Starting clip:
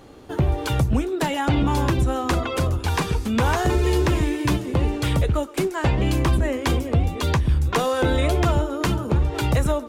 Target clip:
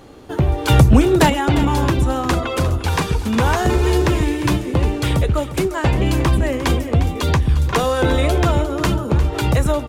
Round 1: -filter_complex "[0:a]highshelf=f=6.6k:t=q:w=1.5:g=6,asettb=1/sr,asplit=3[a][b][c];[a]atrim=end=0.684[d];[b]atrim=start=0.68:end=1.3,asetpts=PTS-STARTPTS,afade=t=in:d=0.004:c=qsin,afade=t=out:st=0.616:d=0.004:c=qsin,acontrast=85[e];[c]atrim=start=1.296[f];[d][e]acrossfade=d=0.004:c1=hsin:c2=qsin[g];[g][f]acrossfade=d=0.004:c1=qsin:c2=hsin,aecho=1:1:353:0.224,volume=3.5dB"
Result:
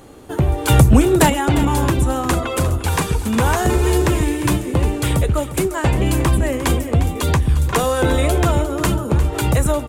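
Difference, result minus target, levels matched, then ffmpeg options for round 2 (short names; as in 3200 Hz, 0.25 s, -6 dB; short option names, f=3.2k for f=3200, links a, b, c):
8000 Hz band +5.0 dB
-filter_complex "[0:a]asettb=1/sr,asplit=3[a][b][c];[a]atrim=end=0.684[d];[b]atrim=start=0.68:end=1.3,asetpts=PTS-STARTPTS,afade=t=in:d=0.004:c=qsin,afade=t=out:st=0.616:d=0.004:c=qsin,acontrast=85[e];[c]atrim=start=1.296[f];[d][e]acrossfade=d=0.004:c1=hsin:c2=qsin[g];[g][f]acrossfade=d=0.004:c1=qsin:c2=hsin,aecho=1:1:353:0.224,volume=3.5dB"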